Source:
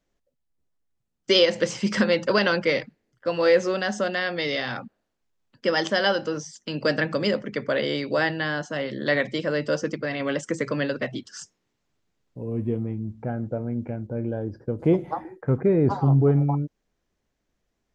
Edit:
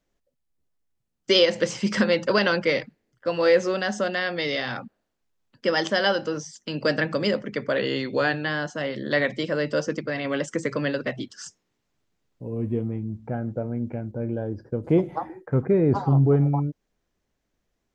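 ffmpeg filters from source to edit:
ffmpeg -i in.wav -filter_complex "[0:a]asplit=3[link_01][link_02][link_03];[link_01]atrim=end=7.784[link_04];[link_02]atrim=start=7.78:end=8.4,asetpts=PTS-STARTPTS,asetrate=41013,aresample=44100[link_05];[link_03]atrim=start=8.396[link_06];[link_04][link_05]acrossfade=duration=0.004:curve1=hsin:curve2=hsin[link_07];[link_07][link_06]acrossfade=duration=0.004:curve1=hsin:curve2=hsin" out.wav

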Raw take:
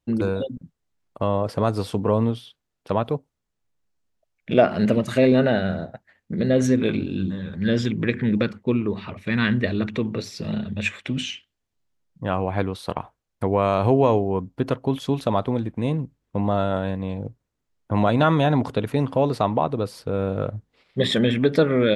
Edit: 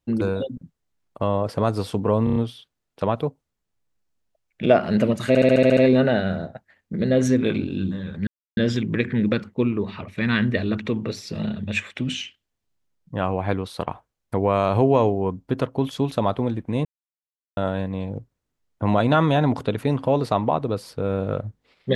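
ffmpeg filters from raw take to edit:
ffmpeg -i in.wav -filter_complex "[0:a]asplit=15[link_01][link_02][link_03][link_04][link_05][link_06][link_07][link_08][link_09][link_10][link_11][link_12][link_13][link_14][link_15];[link_01]atrim=end=2.272[link_16];[link_02]atrim=start=2.238:end=2.272[link_17];[link_03]atrim=start=2.238:end=2.272[link_18];[link_04]atrim=start=2.238:end=2.272[link_19];[link_05]atrim=start=2.238:end=5.232[link_20];[link_06]atrim=start=5.158:end=5.232[link_21];[link_07]atrim=start=5.158:end=5.232[link_22];[link_08]atrim=start=5.158:end=5.232[link_23];[link_09]atrim=start=5.158:end=5.232[link_24];[link_10]atrim=start=5.158:end=5.232[link_25];[link_11]atrim=start=5.158:end=5.232[link_26];[link_12]atrim=start=5.158:end=7.66,asetpts=PTS-STARTPTS,afade=type=out:start_time=2.498:duration=0.004:curve=hsin,apad=pad_dur=0.3[link_27];[link_13]atrim=start=7.66:end=15.94,asetpts=PTS-STARTPTS,afade=type=in:duration=0.004:curve=hsin,afade=type=out:start_time=8.276:duration=0.004:curve=hsin[link_28];[link_14]atrim=start=15.94:end=16.66,asetpts=PTS-STARTPTS,volume=0[link_29];[link_15]atrim=start=16.66,asetpts=PTS-STARTPTS,afade=type=in:duration=0.004:curve=hsin[link_30];[link_16][link_17]acrossfade=duration=0.004:curve1=hsin:curve2=hsin[link_31];[link_31][link_18]acrossfade=duration=0.004:curve1=hsin:curve2=hsin[link_32];[link_32][link_19]acrossfade=duration=0.004:curve1=hsin:curve2=hsin[link_33];[link_33][link_20]acrossfade=duration=0.004:curve1=hsin:curve2=hsin[link_34];[link_34][link_21]acrossfade=duration=0.004:curve1=hsin:curve2=hsin[link_35];[link_35][link_22]acrossfade=duration=0.004:curve1=hsin:curve2=hsin[link_36];[link_36][link_23]acrossfade=duration=0.004:curve1=hsin:curve2=hsin[link_37];[link_37][link_24]acrossfade=duration=0.004:curve1=hsin:curve2=hsin[link_38];[link_38][link_25]acrossfade=duration=0.004:curve1=hsin:curve2=hsin[link_39];[link_39][link_26]acrossfade=duration=0.004:curve1=hsin:curve2=hsin[link_40];[link_27][link_28][link_29][link_30]concat=n=4:v=0:a=1[link_41];[link_40][link_41]acrossfade=duration=0.004:curve1=hsin:curve2=hsin" out.wav

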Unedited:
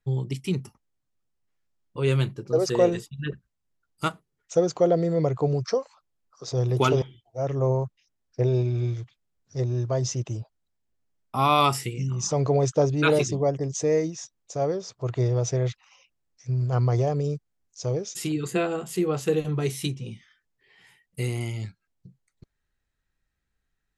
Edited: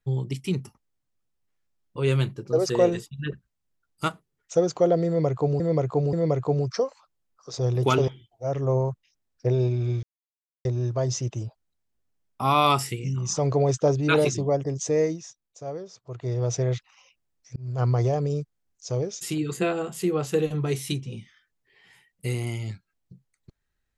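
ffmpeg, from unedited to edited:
ffmpeg -i in.wav -filter_complex "[0:a]asplit=8[link_01][link_02][link_03][link_04][link_05][link_06][link_07][link_08];[link_01]atrim=end=5.602[link_09];[link_02]atrim=start=5.068:end=5.602[link_10];[link_03]atrim=start=5.068:end=8.97,asetpts=PTS-STARTPTS,afade=type=out:start_time=3.898:duration=0.004:curve=hsin[link_11];[link_04]atrim=start=8.97:end=9.59,asetpts=PTS-STARTPTS,volume=0[link_12];[link_05]atrim=start=9.59:end=14.3,asetpts=PTS-STARTPTS,afade=type=in:duration=0.004:curve=hsin,afade=type=out:start_time=4.4:duration=0.31:silence=0.375837[link_13];[link_06]atrim=start=14.3:end=15.14,asetpts=PTS-STARTPTS,volume=-8.5dB[link_14];[link_07]atrim=start=15.14:end=16.5,asetpts=PTS-STARTPTS,afade=type=in:duration=0.31:silence=0.375837,afade=type=out:start_time=1.356:duration=0.004:curve=hsin[link_15];[link_08]atrim=start=16.5,asetpts=PTS-STARTPTS,afade=type=in:duration=0.27[link_16];[link_09][link_10]acrossfade=duration=0.004:curve1=hsin:curve2=hsin[link_17];[link_11][link_12][link_13][link_14][link_15][link_16]concat=n=6:v=0:a=1[link_18];[link_17][link_18]acrossfade=duration=0.004:curve1=hsin:curve2=hsin" out.wav

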